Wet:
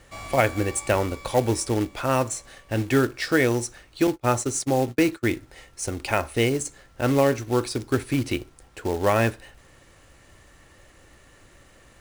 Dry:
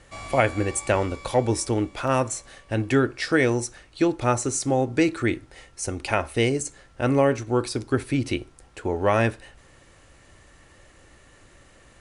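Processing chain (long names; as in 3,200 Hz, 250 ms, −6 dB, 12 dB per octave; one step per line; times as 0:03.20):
0:04.07–0:05.30: noise gate −27 dBFS, range −32 dB
floating-point word with a short mantissa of 2 bits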